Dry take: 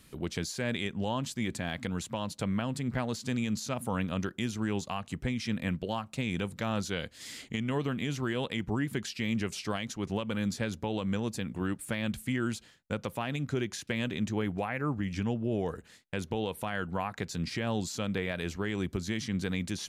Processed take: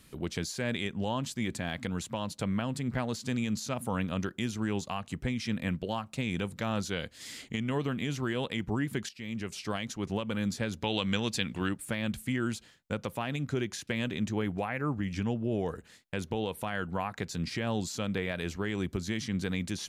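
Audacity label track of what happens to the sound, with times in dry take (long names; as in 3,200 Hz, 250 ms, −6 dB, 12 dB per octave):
9.090000	9.780000	fade in, from −13 dB
10.810000	11.690000	parametric band 3,400 Hz +12 dB 2.1 octaves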